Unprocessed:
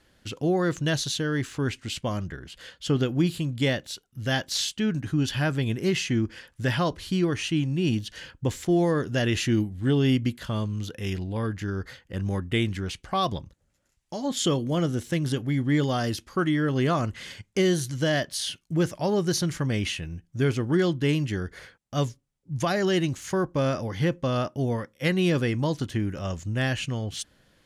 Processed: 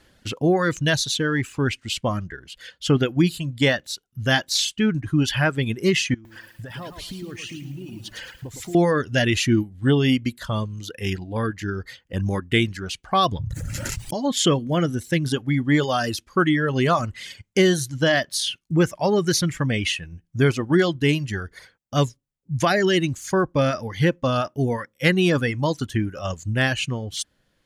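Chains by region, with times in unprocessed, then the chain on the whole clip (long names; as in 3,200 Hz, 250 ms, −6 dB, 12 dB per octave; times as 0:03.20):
0:06.14–0:08.75: downward compressor 10 to 1, threshold −36 dBFS + feedback echo at a low word length 110 ms, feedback 55%, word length 9 bits, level −3 dB
0:13.39–0:14.14: parametric band 110 Hz +14 dB 0.95 octaves + envelope flattener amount 100%
whole clip: reverb reduction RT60 1.8 s; dynamic equaliser 1,800 Hz, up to +3 dB, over −40 dBFS, Q 0.77; level +5.5 dB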